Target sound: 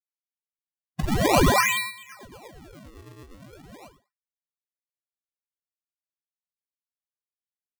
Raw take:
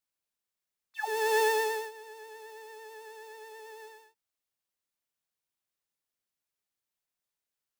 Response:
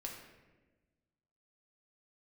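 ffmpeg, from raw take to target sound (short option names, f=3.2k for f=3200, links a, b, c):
-af "lowpass=f=2.4k:t=q:w=0.5098,lowpass=f=2.4k:t=q:w=0.6013,lowpass=f=2.4k:t=q:w=0.9,lowpass=f=2.4k:t=q:w=2.563,afreqshift=-2800,agate=range=-33dB:threshold=-41dB:ratio=3:detection=peak,acrusher=samples=33:mix=1:aa=0.000001:lfo=1:lforange=52.8:lforate=0.4,volume=8dB"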